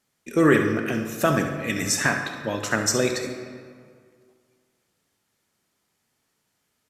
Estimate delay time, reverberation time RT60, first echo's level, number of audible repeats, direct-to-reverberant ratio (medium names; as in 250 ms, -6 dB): 68 ms, 2.0 s, -11.0 dB, 1, 4.0 dB